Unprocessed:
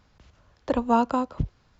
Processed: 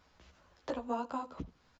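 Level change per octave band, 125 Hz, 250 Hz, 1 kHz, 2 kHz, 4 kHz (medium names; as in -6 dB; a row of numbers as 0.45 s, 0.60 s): -18.0 dB, -15.0 dB, -13.5 dB, -11.0 dB, -10.0 dB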